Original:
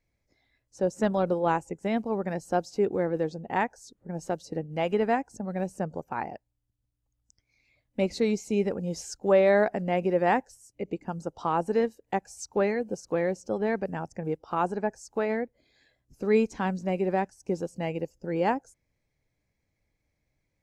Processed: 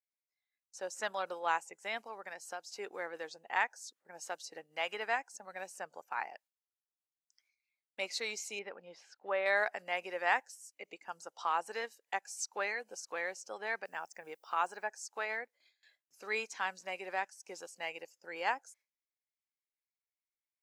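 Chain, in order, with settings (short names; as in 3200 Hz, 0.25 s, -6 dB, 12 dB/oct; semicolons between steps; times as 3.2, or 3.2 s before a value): gate with hold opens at -54 dBFS; HPF 1300 Hz 12 dB/oct; 2–2.72 compressor 2.5:1, threshold -44 dBFS, peak gain reduction 9 dB; 8.59–9.46 air absorption 380 m; 13.84–14.86 added noise violet -79 dBFS; gain +1.5 dB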